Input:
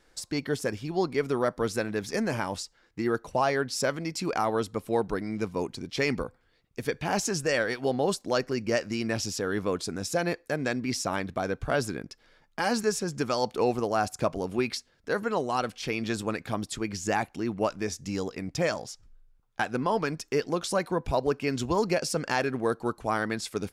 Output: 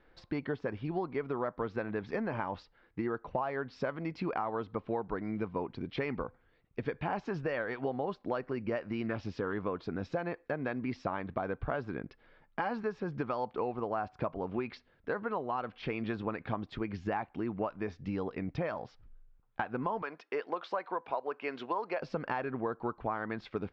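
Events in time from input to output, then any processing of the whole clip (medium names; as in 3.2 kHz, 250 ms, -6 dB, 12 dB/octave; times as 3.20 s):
9.03–9.53 s: loudspeaker Doppler distortion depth 0.12 ms
20.02–22.00 s: high-pass 510 Hz
whole clip: Bessel low-pass 2.2 kHz, order 6; dynamic bell 1 kHz, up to +6 dB, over -43 dBFS, Q 1.4; compression 6:1, threshold -31 dBFS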